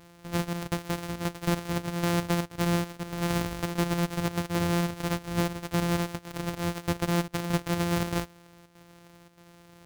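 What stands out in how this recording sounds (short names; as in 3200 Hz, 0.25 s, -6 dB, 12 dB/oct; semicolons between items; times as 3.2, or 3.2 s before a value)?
a buzz of ramps at a fixed pitch in blocks of 256 samples; chopped level 1.6 Hz, depth 60%, duty 85%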